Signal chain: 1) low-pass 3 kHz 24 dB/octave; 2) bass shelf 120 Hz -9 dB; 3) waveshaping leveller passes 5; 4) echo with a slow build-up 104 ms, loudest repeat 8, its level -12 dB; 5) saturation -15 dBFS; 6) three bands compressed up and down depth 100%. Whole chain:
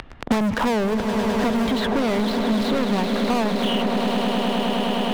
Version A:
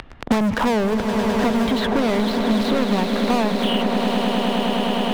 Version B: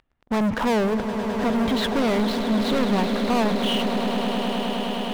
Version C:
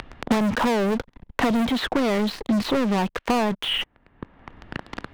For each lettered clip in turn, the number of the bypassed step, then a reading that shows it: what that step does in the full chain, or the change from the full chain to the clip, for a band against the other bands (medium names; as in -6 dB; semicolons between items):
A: 5, distortion -18 dB; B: 6, crest factor change -7.0 dB; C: 4, momentary loudness spread change +13 LU